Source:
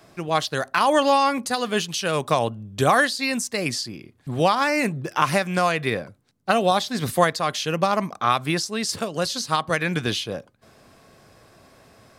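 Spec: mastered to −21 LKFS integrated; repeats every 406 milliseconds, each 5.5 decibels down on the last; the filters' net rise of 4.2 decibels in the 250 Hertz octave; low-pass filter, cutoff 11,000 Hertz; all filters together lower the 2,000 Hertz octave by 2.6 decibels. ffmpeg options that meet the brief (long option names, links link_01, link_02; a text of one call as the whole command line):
ffmpeg -i in.wav -af "lowpass=11000,equalizer=frequency=250:width_type=o:gain=5.5,equalizer=frequency=2000:width_type=o:gain=-3.5,aecho=1:1:406|812|1218|1624|2030|2436|2842:0.531|0.281|0.149|0.079|0.0419|0.0222|0.0118" out.wav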